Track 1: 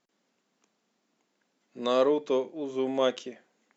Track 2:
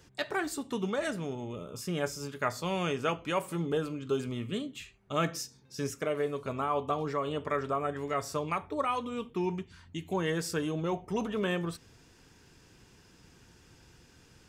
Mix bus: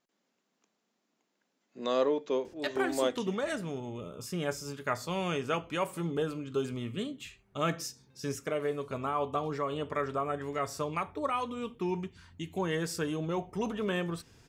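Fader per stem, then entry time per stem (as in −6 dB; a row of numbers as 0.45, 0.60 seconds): −4.0, −1.0 decibels; 0.00, 2.45 seconds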